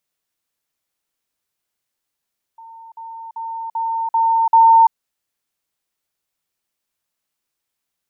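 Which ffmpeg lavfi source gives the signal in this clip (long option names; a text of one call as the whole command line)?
ffmpeg -f lavfi -i "aevalsrc='pow(10,(-36.5+6*floor(t/0.39))/20)*sin(2*PI*908*t)*clip(min(mod(t,0.39),0.34-mod(t,0.39))/0.005,0,1)':duration=2.34:sample_rate=44100" out.wav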